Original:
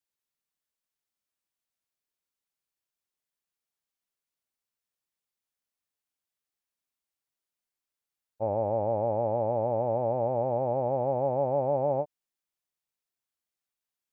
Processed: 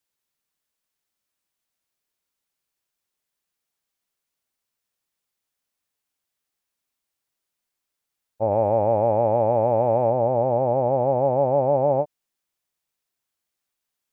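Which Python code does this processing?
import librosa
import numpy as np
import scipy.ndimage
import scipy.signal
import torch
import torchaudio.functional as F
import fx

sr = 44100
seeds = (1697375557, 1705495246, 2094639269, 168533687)

y = fx.high_shelf(x, sr, hz=2000.0, db=11.0, at=(8.51, 10.1))
y = F.gain(torch.from_numpy(y), 7.0).numpy()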